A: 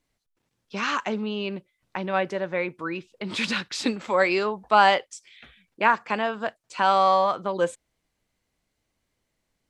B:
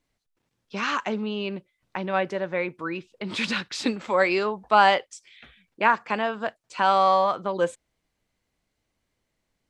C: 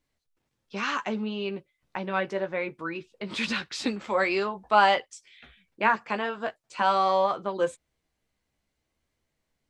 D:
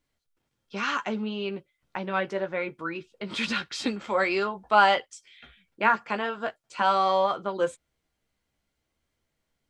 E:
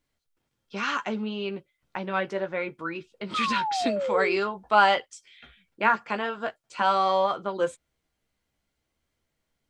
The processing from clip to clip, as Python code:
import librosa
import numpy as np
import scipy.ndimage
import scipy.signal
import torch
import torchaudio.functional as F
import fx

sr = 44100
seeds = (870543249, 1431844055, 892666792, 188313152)

y1 = fx.high_shelf(x, sr, hz=7700.0, db=-4.5)
y2 = fx.chorus_voices(y1, sr, voices=4, hz=0.57, base_ms=14, depth_ms=1.5, mix_pct=30)
y3 = fx.small_body(y2, sr, hz=(1400.0, 3200.0), ring_ms=95, db=11)
y4 = fx.spec_paint(y3, sr, seeds[0], shape='fall', start_s=3.34, length_s=1.03, low_hz=360.0, high_hz=1300.0, level_db=-28.0)